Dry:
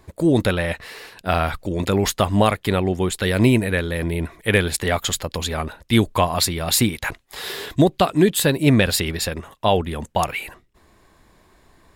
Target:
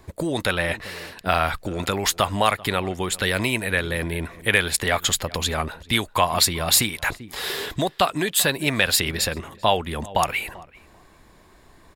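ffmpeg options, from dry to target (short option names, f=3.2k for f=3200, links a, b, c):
-filter_complex "[0:a]asplit=2[a][b];[b]adelay=390,lowpass=f=3.2k:p=1,volume=-23dB,asplit=2[c][d];[d]adelay=390,lowpass=f=3.2k:p=1,volume=0.16[e];[a][c][e]amix=inputs=3:normalize=0,acrossover=split=690|2200[f][g][h];[f]acompressor=threshold=-28dB:ratio=6[i];[i][g][h]amix=inputs=3:normalize=0,volume=2dB"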